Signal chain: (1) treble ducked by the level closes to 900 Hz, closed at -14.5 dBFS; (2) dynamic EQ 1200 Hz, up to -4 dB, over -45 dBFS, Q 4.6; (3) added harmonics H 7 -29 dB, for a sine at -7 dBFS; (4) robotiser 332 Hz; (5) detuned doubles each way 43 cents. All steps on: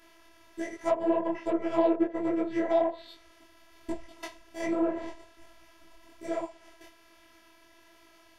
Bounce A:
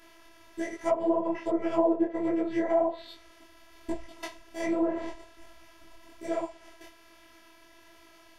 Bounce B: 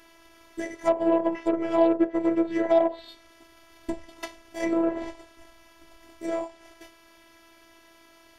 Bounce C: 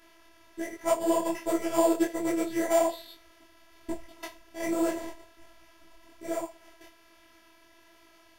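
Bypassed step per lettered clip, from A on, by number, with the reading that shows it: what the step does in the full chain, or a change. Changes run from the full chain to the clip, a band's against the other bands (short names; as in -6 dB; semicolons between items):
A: 3, momentary loudness spread change -2 LU; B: 5, crest factor change -1.5 dB; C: 1, 4 kHz band +5.0 dB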